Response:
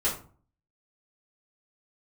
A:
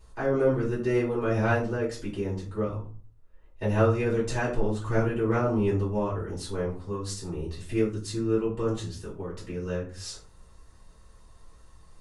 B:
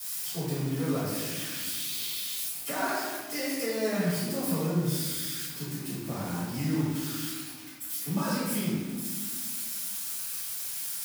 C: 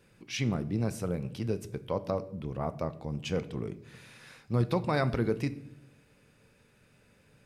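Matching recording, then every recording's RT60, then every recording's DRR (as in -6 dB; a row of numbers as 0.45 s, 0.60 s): A; 0.45 s, 1.5 s, no single decay rate; -8.5 dB, -15.0 dB, 12.0 dB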